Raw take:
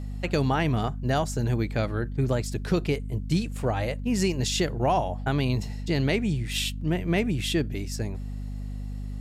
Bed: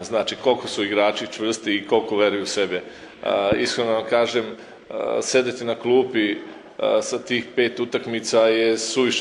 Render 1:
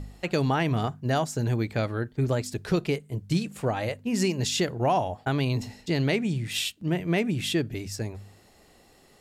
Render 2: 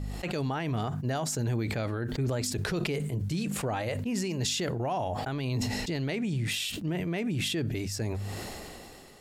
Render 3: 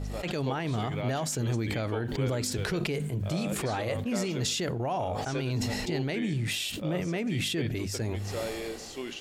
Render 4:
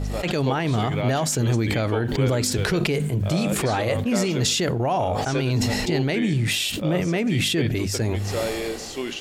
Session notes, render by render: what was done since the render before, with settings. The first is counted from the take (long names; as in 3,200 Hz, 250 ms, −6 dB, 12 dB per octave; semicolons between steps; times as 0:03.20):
hum removal 50 Hz, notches 5
brickwall limiter −23.5 dBFS, peak gain reduction 10 dB; level that may fall only so fast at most 21 dB per second
mix in bed −18.5 dB
level +8 dB